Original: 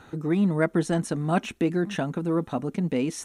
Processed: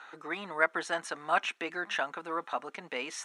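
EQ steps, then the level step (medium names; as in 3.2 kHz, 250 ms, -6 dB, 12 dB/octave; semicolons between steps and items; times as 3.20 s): high-pass 920 Hz 12 dB/octave; distance through air 63 m; peaking EQ 1.4 kHz +5.5 dB 2.4 oct; 0.0 dB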